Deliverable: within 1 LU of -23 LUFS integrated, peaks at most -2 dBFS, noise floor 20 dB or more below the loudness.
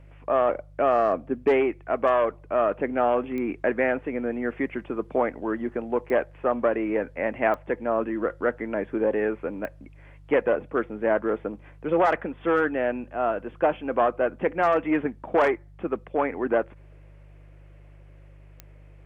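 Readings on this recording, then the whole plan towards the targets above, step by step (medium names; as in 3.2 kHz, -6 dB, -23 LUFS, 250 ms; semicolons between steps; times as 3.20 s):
clicks found 5; hum 50 Hz; highest harmonic 150 Hz; hum level -46 dBFS; loudness -25.5 LUFS; peak level -10.0 dBFS; loudness target -23.0 LUFS
-> de-click; de-hum 50 Hz, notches 3; trim +2.5 dB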